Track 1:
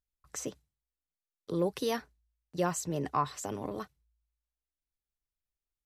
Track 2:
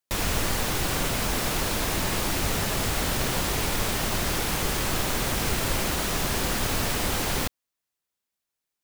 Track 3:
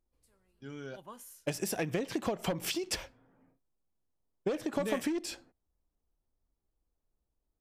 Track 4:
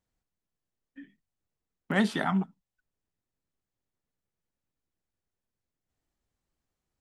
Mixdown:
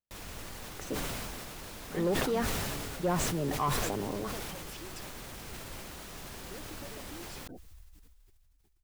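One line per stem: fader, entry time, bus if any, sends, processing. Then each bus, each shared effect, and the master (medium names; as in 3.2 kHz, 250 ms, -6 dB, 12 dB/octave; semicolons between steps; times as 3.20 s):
+2.0 dB, 0.45 s, no send, low-pass 1.3 kHz 6 dB/octave
-18.5 dB, 0.00 s, no send, none
-8.0 dB, 2.05 s, no send, spectral gate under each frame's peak -15 dB strong; compression, threshold -38 dBFS, peak gain reduction 10.5 dB
-16.0 dB, 0.00 s, no send, none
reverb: none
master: saturation -21 dBFS, distortion -17 dB; decay stretcher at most 20 dB/s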